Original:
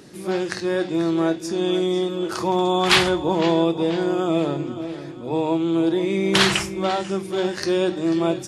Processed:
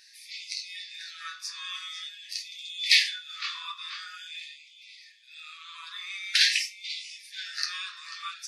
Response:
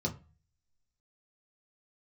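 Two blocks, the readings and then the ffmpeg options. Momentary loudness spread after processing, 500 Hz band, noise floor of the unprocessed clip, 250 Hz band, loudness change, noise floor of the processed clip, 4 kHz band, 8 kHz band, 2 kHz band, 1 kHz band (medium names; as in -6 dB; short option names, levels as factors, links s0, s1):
22 LU, under -40 dB, -35 dBFS, under -40 dB, -7.5 dB, -54 dBFS, -1.5 dB, -3.5 dB, -4.5 dB, -19.5 dB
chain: -filter_complex "[1:a]atrim=start_sample=2205[s0];[0:a][s0]afir=irnorm=-1:irlink=0,afftfilt=real='re*gte(b*sr/1024,990*pow(2000/990,0.5+0.5*sin(2*PI*0.47*pts/sr)))':imag='im*gte(b*sr/1024,990*pow(2000/990,0.5+0.5*sin(2*PI*0.47*pts/sr)))':win_size=1024:overlap=0.75,volume=0.631"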